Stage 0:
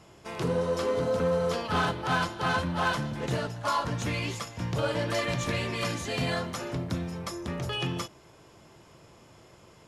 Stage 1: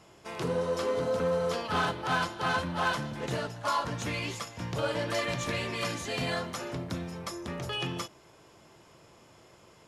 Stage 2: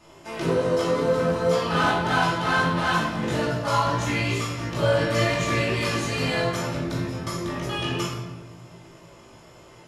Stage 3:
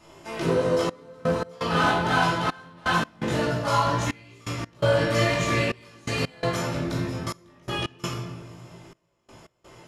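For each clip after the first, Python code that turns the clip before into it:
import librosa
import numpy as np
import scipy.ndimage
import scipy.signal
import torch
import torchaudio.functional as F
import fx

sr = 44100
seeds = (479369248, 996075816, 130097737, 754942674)

y1 = fx.low_shelf(x, sr, hz=200.0, db=-5.5)
y1 = y1 * librosa.db_to_amplitude(-1.0)
y2 = fx.wow_flutter(y1, sr, seeds[0], rate_hz=2.1, depth_cents=23.0)
y2 = fx.doubler(y2, sr, ms=18.0, db=-4.0)
y2 = fx.room_shoebox(y2, sr, seeds[1], volume_m3=740.0, walls='mixed', distance_m=2.6)
y3 = fx.step_gate(y2, sr, bpm=84, pattern='xxxxx..x.', floor_db=-24.0, edge_ms=4.5)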